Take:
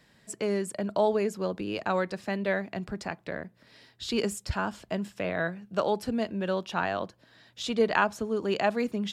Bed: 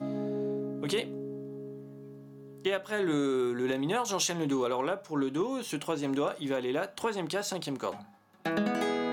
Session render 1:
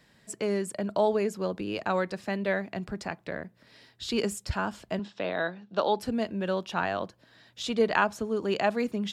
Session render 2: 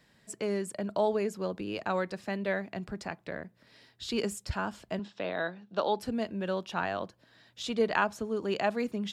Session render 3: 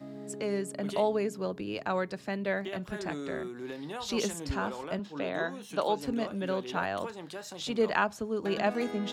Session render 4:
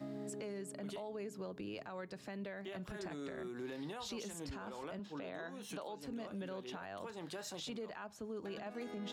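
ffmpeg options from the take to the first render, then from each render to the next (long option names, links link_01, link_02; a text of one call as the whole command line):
ffmpeg -i in.wav -filter_complex "[0:a]asettb=1/sr,asplit=3[link_01][link_02][link_03];[link_01]atrim=end=4.994[link_04];[link_02]atrim=start=4.99:end=5.99,asetpts=PTS-STARTPTS,afade=type=in:duration=0.004:curve=qsin,afade=type=out:start_time=0.996:duration=0.004:curve=qsin,highpass=160,equalizer=frequency=160:width_type=q:width=4:gain=-6,equalizer=frequency=860:width_type=q:width=4:gain=4,equalizer=frequency=2200:width_type=q:width=4:gain=-4,equalizer=frequency=3700:width_type=q:width=4:gain=8,lowpass=frequency=5600:width=0.5412,lowpass=frequency=5600:width=1.3066[link_05];[link_03]atrim=start=5.986[link_06];[link_04][link_05]acrossfade=duration=0.004:curve1=hsin:curve2=qsin[link_07];[link_07][link_06]acrossfade=duration=0.004:curve1=qsin:curve2=hsin" out.wav
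ffmpeg -i in.wav -af "volume=-3dB" out.wav
ffmpeg -i in.wav -i bed.wav -filter_complex "[1:a]volume=-9.5dB[link_01];[0:a][link_01]amix=inputs=2:normalize=0" out.wav
ffmpeg -i in.wav -af "acompressor=threshold=-40dB:ratio=5,alimiter=level_in=12dB:limit=-24dB:level=0:latency=1:release=17,volume=-12dB" out.wav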